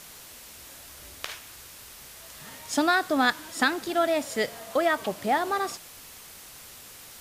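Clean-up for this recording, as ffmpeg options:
ffmpeg -i in.wav -af "afwtdn=0.0056" out.wav

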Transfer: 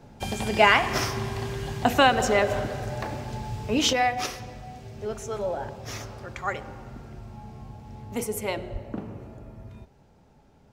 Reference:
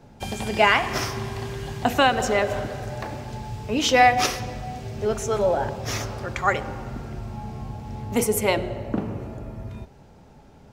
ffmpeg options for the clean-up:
ffmpeg -i in.wav -filter_complex "[0:a]asplit=3[link_01][link_02][link_03];[link_01]afade=type=out:start_time=8.72:duration=0.02[link_04];[link_02]highpass=frequency=140:width=0.5412,highpass=frequency=140:width=1.3066,afade=type=in:start_time=8.72:duration=0.02,afade=type=out:start_time=8.84:duration=0.02[link_05];[link_03]afade=type=in:start_time=8.84:duration=0.02[link_06];[link_04][link_05][link_06]amix=inputs=3:normalize=0,asetnsamples=nb_out_samples=441:pad=0,asendcmd='3.93 volume volume 8dB',volume=0dB" out.wav

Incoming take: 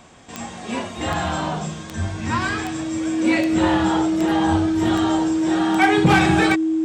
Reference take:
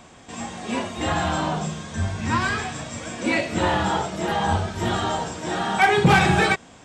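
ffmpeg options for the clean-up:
ffmpeg -i in.wav -af "adeclick=threshold=4,bandreject=frequency=320:width=30" out.wav

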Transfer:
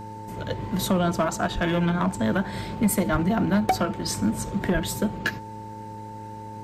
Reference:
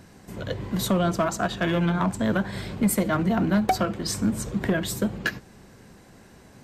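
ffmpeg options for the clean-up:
ffmpeg -i in.wav -filter_complex "[0:a]bandreject=frequency=106.4:width_type=h:width=4,bandreject=frequency=212.8:width_type=h:width=4,bandreject=frequency=319.2:width_type=h:width=4,bandreject=frequency=425.6:width_type=h:width=4,bandreject=frequency=532:width_type=h:width=4,bandreject=frequency=890:width=30,asplit=3[link_01][link_02][link_03];[link_01]afade=type=out:start_time=1.54:duration=0.02[link_04];[link_02]highpass=frequency=140:width=0.5412,highpass=frequency=140:width=1.3066,afade=type=in:start_time=1.54:duration=0.02,afade=type=out:start_time=1.66:duration=0.02[link_05];[link_03]afade=type=in:start_time=1.66:duration=0.02[link_06];[link_04][link_05][link_06]amix=inputs=3:normalize=0,asplit=3[link_07][link_08][link_09];[link_07]afade=type=out:start_time=3.11:duration=0.02[link_10];[link_08]highpass=frequency=140:width=0.5412,highpass=frequency=140:width=1.3066,afade=type=in:start_time=3.11:duration=0.02,afade=type=out:start_time=3.23:duration=0.02[link_11];[link_09]afade=type=in:start_time=3.23:duration=0.02[link_12];[link_10][link_11][link_12]amix=inputs=3:normalize=0,asplit=3[link_13][link_14][link_15];[link_13]afade=type=out:start_time=4.73:duration=0.02[link_16];[link_14]highpass=frequency=140:width=0.5412,highpass=frequency=140:width=1.3066,afade=type=in:start_time=4.73:duration=0.02,afade=type=out:start_time=4.85:duration=0.02[link_17];[link_15]afade=type=in:start_time=4.85:duration=0.02[link_18];[link_16][link_17][link_18]amix=inputs=3:normalize=0" out.wav

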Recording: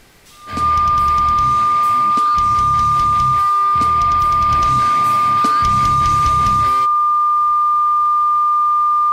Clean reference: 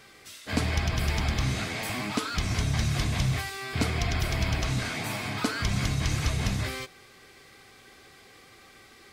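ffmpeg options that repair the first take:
ffmpeg -i in.wav -af "adeclick=threshold=4,bandreject=frequency=1200:width=30,agate=range=-21dB:threshold=-6dB,asetnsamples=nb_out_samples=441:pad=0,asendcmd='4.49 volume volume -4dB',volume=0dB" out.wav

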